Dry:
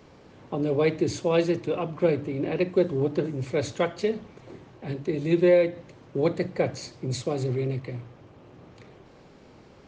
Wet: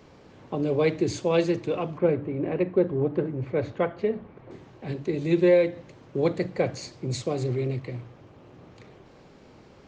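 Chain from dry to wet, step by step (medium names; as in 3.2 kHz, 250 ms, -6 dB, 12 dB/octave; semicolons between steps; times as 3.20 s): 1.98–4.51 s: low-pass 1.9 kHz 12 dB/octave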